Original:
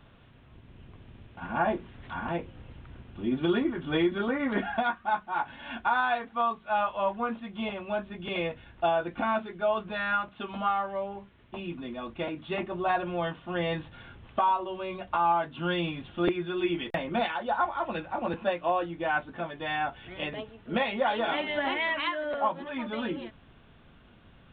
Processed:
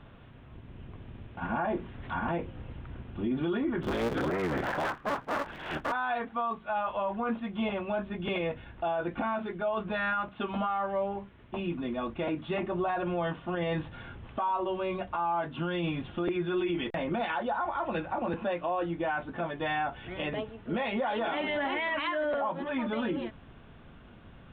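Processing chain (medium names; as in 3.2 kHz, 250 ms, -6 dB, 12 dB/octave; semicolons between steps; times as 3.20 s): 3.82–5.92 s: cycle switcher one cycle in 3, inverted; low-pass 2.3 kHz 6 dB/octave; peak limiter -27.5 dBFS, peak gain reduction 11 dB; trim +4.5 dB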